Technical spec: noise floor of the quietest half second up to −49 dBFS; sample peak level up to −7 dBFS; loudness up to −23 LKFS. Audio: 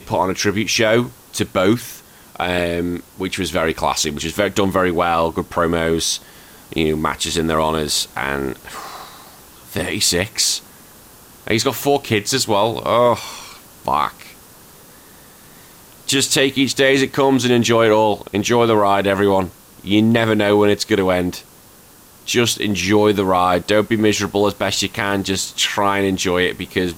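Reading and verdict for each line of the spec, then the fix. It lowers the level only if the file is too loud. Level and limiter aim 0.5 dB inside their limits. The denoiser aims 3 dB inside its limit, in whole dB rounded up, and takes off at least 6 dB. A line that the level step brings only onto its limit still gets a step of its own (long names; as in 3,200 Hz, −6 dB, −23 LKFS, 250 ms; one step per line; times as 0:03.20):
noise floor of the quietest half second −45 dBFS: out of spec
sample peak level −4.5 dBFS: out of spec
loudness −17.5 LKFS: out of spec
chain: level −6 dB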